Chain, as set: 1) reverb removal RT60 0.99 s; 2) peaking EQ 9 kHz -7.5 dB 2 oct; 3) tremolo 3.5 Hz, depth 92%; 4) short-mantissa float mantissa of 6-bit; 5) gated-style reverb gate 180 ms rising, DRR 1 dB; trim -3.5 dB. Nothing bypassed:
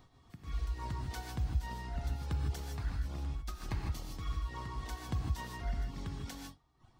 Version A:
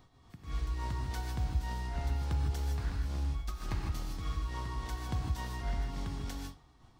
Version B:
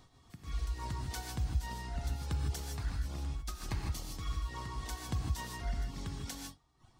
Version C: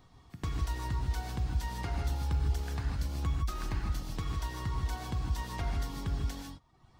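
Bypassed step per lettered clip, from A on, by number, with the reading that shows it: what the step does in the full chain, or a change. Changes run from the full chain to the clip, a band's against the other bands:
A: 1, crest factor change -2.0 dB; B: 2, 8 kHz band +6.5 dB; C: 3, momentary loudness spread change -2 LU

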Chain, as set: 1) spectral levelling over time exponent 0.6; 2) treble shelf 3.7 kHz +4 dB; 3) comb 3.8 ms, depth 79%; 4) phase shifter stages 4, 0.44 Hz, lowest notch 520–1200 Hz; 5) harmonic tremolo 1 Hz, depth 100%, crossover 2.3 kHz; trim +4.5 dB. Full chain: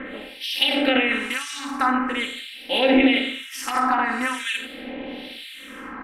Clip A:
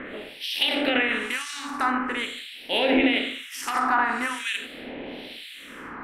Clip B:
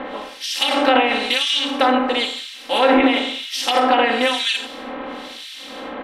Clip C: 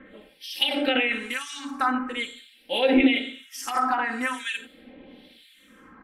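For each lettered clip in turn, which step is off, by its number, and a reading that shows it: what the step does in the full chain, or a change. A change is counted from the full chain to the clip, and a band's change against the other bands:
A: 3, 250 Hz band -2.5 dB; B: 4, crest factor change -2.0 dB; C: 1, momentary loudness spread change -3 LU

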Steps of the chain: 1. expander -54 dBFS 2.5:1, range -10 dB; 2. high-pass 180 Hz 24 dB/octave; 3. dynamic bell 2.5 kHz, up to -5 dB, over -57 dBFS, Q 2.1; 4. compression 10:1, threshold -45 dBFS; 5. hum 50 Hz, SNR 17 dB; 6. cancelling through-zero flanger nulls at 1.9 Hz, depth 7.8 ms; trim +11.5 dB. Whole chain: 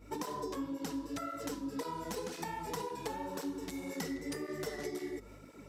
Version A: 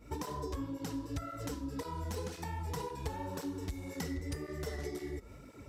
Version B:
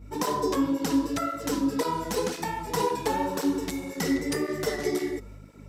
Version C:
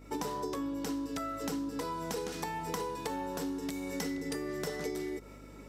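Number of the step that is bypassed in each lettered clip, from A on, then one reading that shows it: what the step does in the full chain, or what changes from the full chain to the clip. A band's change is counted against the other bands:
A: 2, 125 Hz band +11.5 dB; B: 4, momentary loudness spread change +3 LU; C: 6, loudness change +3.0 LU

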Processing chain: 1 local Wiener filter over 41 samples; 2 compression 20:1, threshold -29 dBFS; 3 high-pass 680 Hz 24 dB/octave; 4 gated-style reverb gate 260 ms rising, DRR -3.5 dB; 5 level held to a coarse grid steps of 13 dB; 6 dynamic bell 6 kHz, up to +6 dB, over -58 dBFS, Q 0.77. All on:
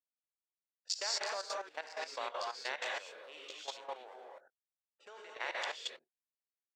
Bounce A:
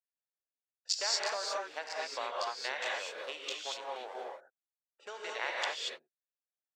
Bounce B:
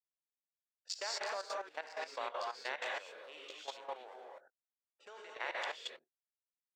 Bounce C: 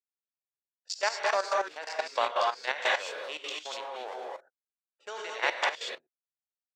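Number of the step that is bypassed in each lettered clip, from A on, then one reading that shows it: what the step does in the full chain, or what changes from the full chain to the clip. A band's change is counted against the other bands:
5, momentary loudness spread change -3 LU; 6, crest factor change -2.5 dB; 2, mean gain reduction 7.0 dB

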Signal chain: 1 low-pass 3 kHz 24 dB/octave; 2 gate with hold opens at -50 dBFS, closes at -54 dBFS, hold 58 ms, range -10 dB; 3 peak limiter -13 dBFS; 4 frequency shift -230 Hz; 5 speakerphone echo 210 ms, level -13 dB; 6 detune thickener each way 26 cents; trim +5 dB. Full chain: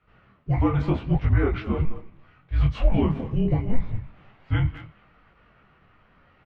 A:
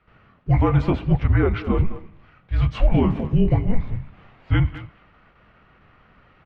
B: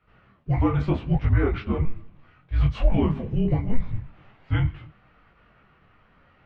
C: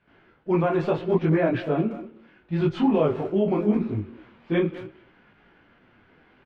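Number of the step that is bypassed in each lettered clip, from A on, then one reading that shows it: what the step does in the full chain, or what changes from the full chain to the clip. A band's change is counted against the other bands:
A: 6, loudness change +3.5 LU; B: 5, momentary loudness spread change -3 LU; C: 4, 125 Hz band -9.0 dB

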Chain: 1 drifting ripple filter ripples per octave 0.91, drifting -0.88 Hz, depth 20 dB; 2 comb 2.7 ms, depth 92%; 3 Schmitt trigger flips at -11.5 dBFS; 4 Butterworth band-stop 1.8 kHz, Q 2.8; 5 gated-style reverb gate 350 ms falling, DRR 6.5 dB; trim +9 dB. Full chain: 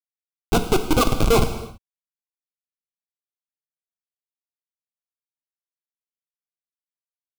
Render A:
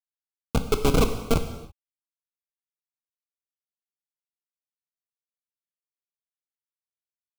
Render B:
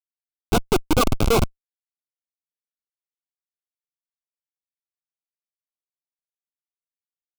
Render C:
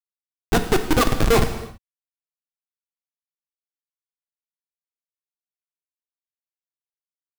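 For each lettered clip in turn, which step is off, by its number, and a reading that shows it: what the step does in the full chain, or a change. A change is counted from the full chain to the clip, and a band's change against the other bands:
1, 125 Hz band +3.0 dB; 5, momentary loudness spread change -8 LU; 4, 2 kHz band +3.5 dB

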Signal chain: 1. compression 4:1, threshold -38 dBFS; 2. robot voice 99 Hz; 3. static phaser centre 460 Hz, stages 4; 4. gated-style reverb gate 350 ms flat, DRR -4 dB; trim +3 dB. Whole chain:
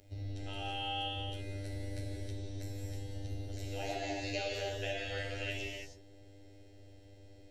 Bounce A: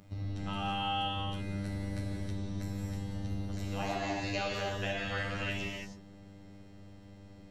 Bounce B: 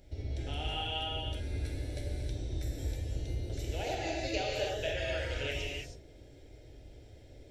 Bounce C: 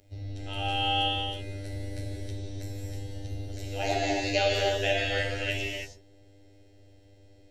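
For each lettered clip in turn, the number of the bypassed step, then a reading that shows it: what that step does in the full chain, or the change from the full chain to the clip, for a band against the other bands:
3, momentary loudness spread change -2 LU; 2, 500 Hz band +1.5 dB; 1, mean gain reduction 5.0 dB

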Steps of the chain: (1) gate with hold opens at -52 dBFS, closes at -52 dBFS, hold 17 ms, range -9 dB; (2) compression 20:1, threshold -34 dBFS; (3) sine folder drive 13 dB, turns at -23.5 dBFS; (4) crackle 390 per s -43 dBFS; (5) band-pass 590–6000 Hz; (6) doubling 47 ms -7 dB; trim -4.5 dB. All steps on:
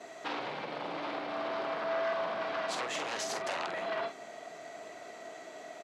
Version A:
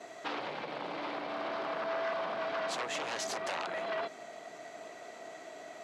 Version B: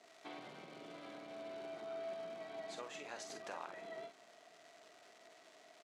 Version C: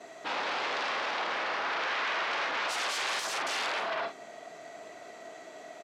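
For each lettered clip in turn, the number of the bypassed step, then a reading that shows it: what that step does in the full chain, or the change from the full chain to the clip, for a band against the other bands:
6, loudness change -1.5 LU; 3, distortion -2 dB; 2, mean gain reduction 5.5 dB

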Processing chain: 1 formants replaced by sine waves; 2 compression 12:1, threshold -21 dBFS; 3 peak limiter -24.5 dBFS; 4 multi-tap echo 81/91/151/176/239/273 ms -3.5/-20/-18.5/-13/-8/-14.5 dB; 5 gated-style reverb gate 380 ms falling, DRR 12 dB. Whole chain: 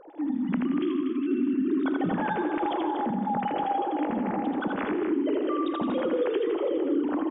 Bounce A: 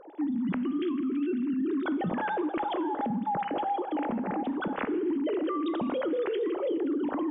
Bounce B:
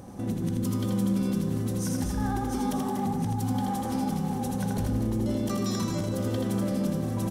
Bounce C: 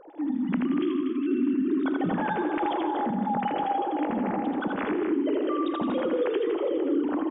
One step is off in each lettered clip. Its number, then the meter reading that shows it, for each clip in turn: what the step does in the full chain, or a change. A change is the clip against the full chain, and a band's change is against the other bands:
4, echo-to-direct -1.0 dB to -12.0 dB; 1, 125 Hz band +19.0 dB; 2, mean gain reduction 3.5 dB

